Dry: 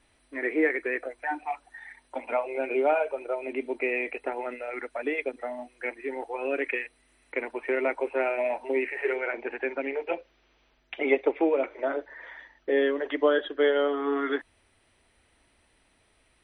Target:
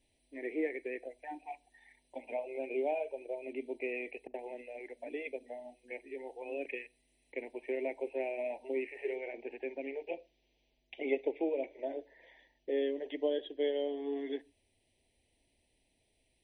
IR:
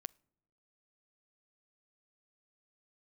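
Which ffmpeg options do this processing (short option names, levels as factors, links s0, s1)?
-filter_complex "[0:a]asuperstop=centerf=1300:order=4:qfactor=0.85,asettb=1/sr,asplit=3[s0][s1][s2];[s0]atrim=end=4.274[s3];[s1]atrim=start=4.27:end=6.66,asetpts=PTS-STARTPTS,afade=t=in:d=0.004:c=qsin,afade=t=out:st=2.386:d=0.004:c=qsin,acrossover=split=240[s4][s5];[s5]adelay=70[s6];[s4][s6]amix=inputs=2:normalize=0,atrim=end_sample=105399[s7];[s2]atrim=start=6.656[s8];[s3][s7]acrossfade=d=0.004:c1=hsin:c2=qsin[s9];[s9][s8]acrossfade=d=0.004:c1=qsin:c2=hsin[s10];[1:a]atrim=start_sample=2205,afade=t=out:st=0.2:d=0.01,atrim=end_sample=9261[s11];[s10][s11]afir=irnorm=-1:irlink=0,volume=0.631"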